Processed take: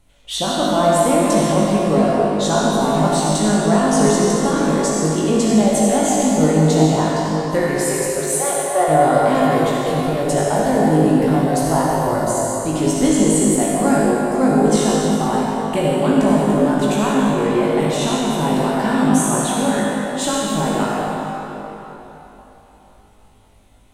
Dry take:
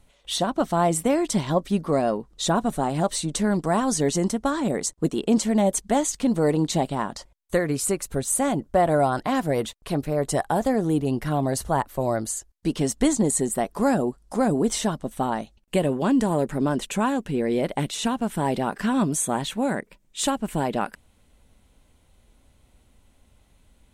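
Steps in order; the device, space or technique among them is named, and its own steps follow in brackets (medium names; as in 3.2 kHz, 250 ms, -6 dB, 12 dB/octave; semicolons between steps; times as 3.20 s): 7.79–8.88 s: steep high-pass 360 Hz 72 dB/octave; tunnel (flutter echo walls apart 3.3 m, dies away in 0.24 s; reverberation RT60 3.8 s, pre-delay 50 ms, DRR -4.5 dB)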